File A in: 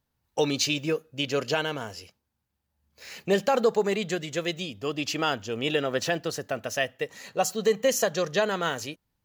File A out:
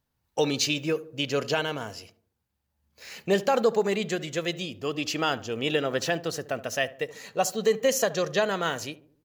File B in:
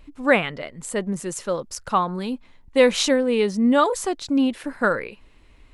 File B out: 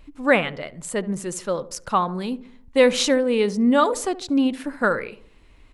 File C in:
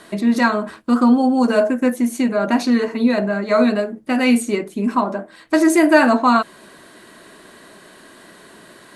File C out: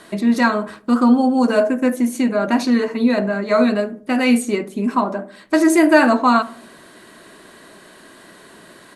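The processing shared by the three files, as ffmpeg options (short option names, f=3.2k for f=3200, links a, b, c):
-filter_complex "[0:a]asplit=2[a][b];[b]adelay=72,lowpass=f=940:p=1,volume=-15dB,asplit=2[c][d];[d]adelay=72,lowpass=f=940:p=1,volume=0.53,asplit=2[e][f];[f]adelay=72,lowpass=f=940:p=1,volume=0.53,asplit=2[g][h];[h]adelay=72,lowpass=f=940:p=1,volume=0.53,asplit=2[i][j];[j]adelay=72,lowpass=f=940:p=1,volume=0.53[k];[a][c][e][g][i][k]amix=inputs=6:normalize=0"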